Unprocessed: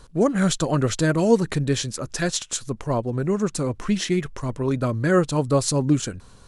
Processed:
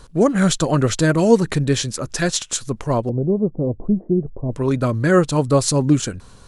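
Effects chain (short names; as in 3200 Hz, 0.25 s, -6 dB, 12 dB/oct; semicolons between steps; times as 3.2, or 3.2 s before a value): 3.09–4.53 steep low-pass 730 Hz 36 dB/oct; gain +4 dB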